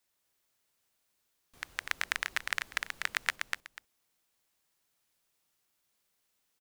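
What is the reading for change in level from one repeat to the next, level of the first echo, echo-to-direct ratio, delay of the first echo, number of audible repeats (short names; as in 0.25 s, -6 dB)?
-14.0 dB, -3.5 dB, -3.5 dB, 0.246 s, 2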